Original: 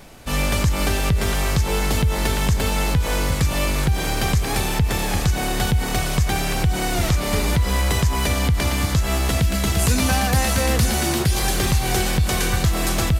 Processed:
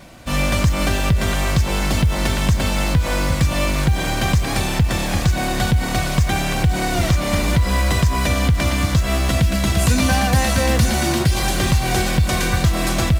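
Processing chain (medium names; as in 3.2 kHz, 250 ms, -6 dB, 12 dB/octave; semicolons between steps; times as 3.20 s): treble shelf 9.6 kHz -8 dB; in parallel at -6 dB: short-mantissa float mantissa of 2-bit; on the sum: comb of notches 430 Hz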